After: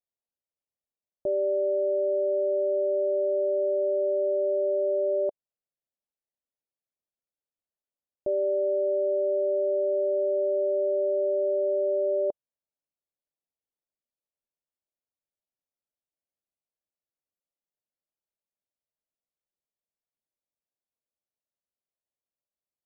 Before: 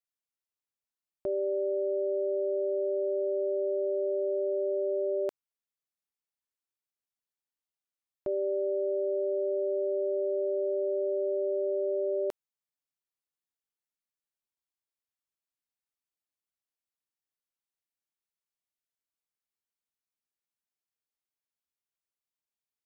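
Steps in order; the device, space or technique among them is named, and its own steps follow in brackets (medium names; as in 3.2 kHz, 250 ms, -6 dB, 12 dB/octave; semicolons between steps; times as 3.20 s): under water (low-pass 830 Hz 24 dB/octave; peaking EQ 580 Hz +6.5 dB 0.4 oct)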